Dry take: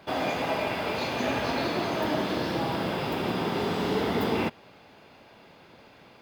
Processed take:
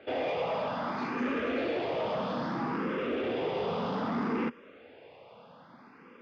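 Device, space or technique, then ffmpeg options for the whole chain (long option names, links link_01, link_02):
barber-pole phaser into a guitar amplifier: -filter_complex "[0:a]asplit=2[link_01][link_02];[link_02]afreqshift=0.62[link_03];[link_01][link_03]amix=inputs=2:normalize=1,asoftclip=type=tanh:threshold=-30dB,highpass=95,equalizer=frequency=110:width_type=q:width=4:gain=-3,equalizer=frequency=240:width_type=q:width=4:gain=6,equalizer=frequency=490:width_type=q:width=4:gain=9,equalizer=frequency=1200:width_type=q:width=4:gain=6,equalizer=frequency=4100:width_type=q:width=4:gain=-8,lowpass=frequency=4500:width=0.5412,lowpass=frequency=4500:width=1.3066"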